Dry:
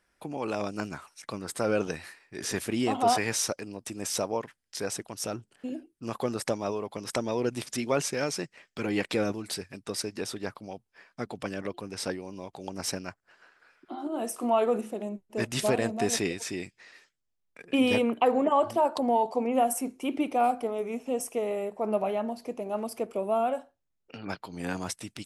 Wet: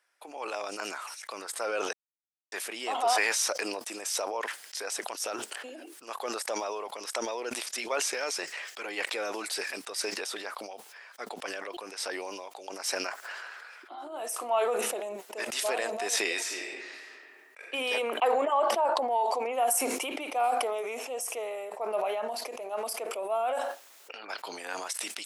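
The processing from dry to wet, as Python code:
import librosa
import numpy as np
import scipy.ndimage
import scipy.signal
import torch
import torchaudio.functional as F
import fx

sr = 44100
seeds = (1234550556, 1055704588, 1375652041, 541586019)

y = fx.reverb_throw(x, sr, start_s=16.33, length_s=1.33, rt60_s=1.2, drr_db=0.0)
y = fx.high_shelf(y, sr, hz=fx.line((18.53, 5600.0), (19.1, 3400.0)), db=-11.0, at=(18.53, 19.1), fade=0.02)
y = fx.edit(y, sr, fx.silence(start_s=1.93, length_s=0.59), tone=tone)
y = scipy.signal.sosfilt(scipy.signal.bessel(4, 700.0, 'highpass', norm='mag', fs=sr, output='sos'), y)
y = fx.sustainer(y, sr, db_per_s=23.0)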